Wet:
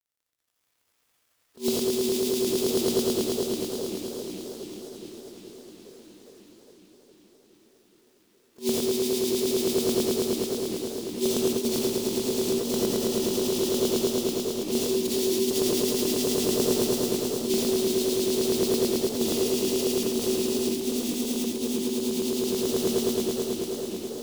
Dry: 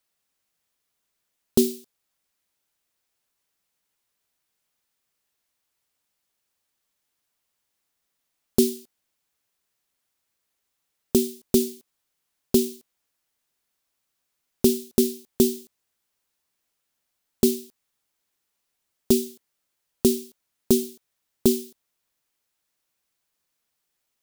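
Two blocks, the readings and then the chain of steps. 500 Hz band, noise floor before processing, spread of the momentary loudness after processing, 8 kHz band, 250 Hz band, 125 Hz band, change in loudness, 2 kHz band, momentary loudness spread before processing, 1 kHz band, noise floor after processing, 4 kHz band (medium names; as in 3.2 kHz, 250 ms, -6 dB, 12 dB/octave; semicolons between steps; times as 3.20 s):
+4.5 dB, -79 dBFS, 8 LU, +4.5 dB, +1.0 dB, +1.5 dB, -2.0 dB, +12.0 dB, 9 LU, +12.0 dB, -71 dBFS, +9.0 dB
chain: on a send: echo with a slow build-up 109 ms, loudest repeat 5, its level -8 dB; on the sum: harmonic-percussive split percussive +5 dB; low-pass 2.5 kHz 6 dB/octave; in parallel at -7 dB: saturation -14.5 dBFS, distortion -11 dB; on the sum: bass shelf 130 Hz -9 dB; compressor with a negative ratio -25 dBFS, ratio -0.5; bass shelf 320 Hz -9.5 dB; bit crusher 11-bit; gated-style reverb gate 110 ms rising, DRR -2 dB; modulated delay 414 ms, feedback 72%, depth 209 cents, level -12 dB; trim +3 dB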